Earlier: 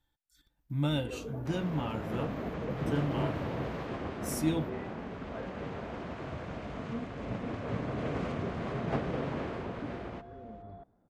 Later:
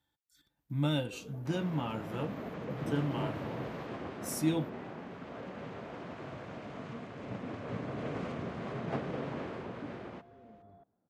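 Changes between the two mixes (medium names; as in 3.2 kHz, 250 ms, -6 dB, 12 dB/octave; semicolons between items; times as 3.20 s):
first sound -9.0 dB; second sound -3.0 dB; master: add high-pass 100 Hz 12 dB/octave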